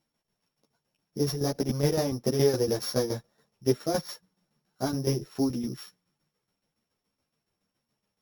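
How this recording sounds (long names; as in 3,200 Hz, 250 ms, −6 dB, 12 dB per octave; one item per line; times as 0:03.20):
a buzz of ramps at a fixed pitch in blocks of 8 samples
tremolo saw down 7.1 Hz, depth 70%
a shimmering, thickened sound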